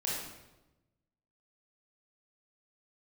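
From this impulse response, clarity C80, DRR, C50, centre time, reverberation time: 3.0 dB, -6.0 dB, -1.0 dB, 72 ms, 1.0 s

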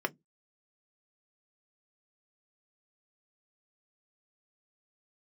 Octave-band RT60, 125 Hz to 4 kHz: 0.25 s, 0.25 s, 0.15 s, 0.10 s, 0.10 s, 0.10 s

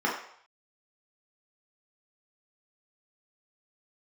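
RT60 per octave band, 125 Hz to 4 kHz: 0.60 s, 0.40 s, 0.60 s, 0.70 s, 0.60 s, 0.60 s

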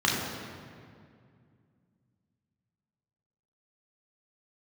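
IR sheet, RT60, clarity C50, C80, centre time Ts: 2.2 s, 1.0 dB, 2.5 dB, 93 ms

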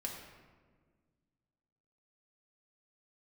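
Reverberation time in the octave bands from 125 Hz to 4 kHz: 2.4 s, 2.3 s, 1.8 s, 1.4 s, 1.2 s, 0.85 s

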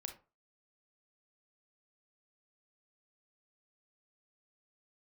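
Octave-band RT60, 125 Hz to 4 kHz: 0.35 s, 0.30 s, 0.35 s, 0.35 s, 0.25 s, 0.20 s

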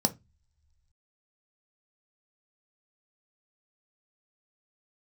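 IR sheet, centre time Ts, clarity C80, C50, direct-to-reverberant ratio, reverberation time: 5 ms, 29.0 dB, 20.0 dB, 6.5 dB, no single decay rate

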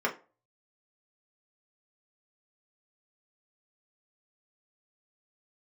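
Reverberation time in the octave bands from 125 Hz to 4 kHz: 0.35 s, 0.30 s, 0.35 s, 0.35 s, 0.25 s, 0.20 s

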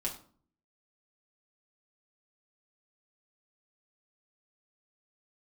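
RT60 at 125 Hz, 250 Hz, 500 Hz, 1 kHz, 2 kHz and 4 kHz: 0.75 s, 0.70 s, 0.50 s, 0.45 s, 0.35 s, 0.30 s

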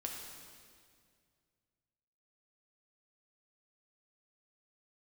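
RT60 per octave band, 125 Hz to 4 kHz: 2.9 s, 2.4 s, 2.2 s, 1.9 s, 1.9 s, 1.9 s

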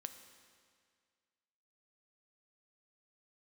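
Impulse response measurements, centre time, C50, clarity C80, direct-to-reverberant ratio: 21 ms, 9.5 dB, 10.5 dB, 8.0 dB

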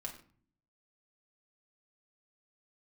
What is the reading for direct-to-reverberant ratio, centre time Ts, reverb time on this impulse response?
-0.5 dB, 17 ms, 0.45 s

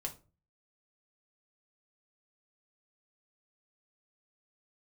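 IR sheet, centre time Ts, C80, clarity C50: 9 ms, 21.0 dB, 14.0 dB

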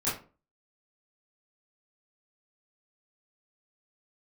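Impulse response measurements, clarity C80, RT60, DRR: 12.5 dB, 0.35 s, -11.5 dB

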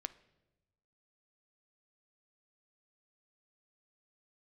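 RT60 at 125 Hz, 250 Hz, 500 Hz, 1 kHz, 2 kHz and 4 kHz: 1.4 s, 1.3 s, 1.2 s, 0.90 s, 0.85 s, 0.80 s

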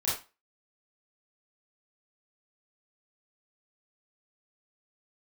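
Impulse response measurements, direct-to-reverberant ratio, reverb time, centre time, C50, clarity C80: -8.5 dB, 0.30 s, 44 ms, 3.0 dB, 10.5 dB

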